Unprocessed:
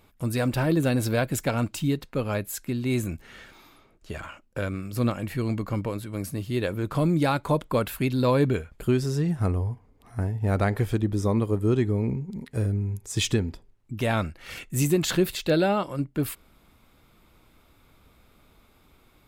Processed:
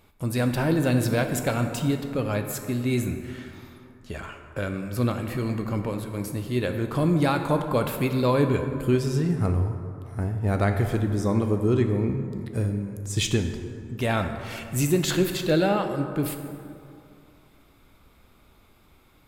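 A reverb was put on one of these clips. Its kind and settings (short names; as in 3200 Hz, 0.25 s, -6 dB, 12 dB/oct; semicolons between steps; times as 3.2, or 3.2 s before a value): plate-style reverb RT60 2.5 s, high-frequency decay 0.45×, DRR 5.5 dB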